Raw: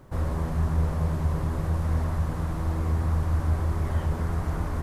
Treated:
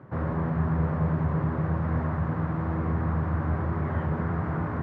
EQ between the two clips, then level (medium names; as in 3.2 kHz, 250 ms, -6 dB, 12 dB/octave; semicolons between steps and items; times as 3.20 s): high-pass 110 Hz 24 dB/octave; resonant low-pass 1.7 kHz, resonance Q 1.5; bass shelf 270 Hz +7 dB; 0.0 dB